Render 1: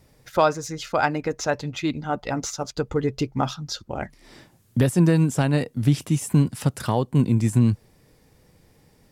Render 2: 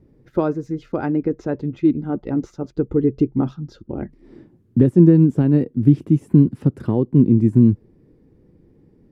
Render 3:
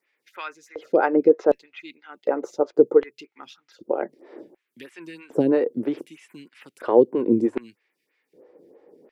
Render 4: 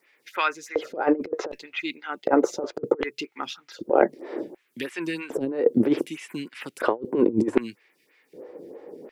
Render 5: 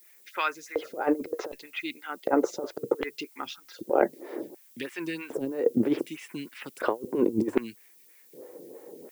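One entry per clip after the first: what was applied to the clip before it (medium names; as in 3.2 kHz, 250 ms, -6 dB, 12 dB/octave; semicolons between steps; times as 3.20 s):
FFT filter 120 Hz 0 dB, 350 Hz +8 dB, 660 Hz -10 dB, 1.7 kHz -13 dB, 7.2 kHz -27 dB; trim +2.5 dB
dynamic bell 650 Hz, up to -5 dB, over -35 dBFS, Q 2.4; LFO high-pass square 0.66 Hz 530–2300 Hz; lamp-driven phase shifter 3.1 Hz; trim +7.5 dB
compressor with a negative ratio -25 dBFS, ratio -0.5; trim +4 dB
added noise violet -53 dBFS; trim -4 dB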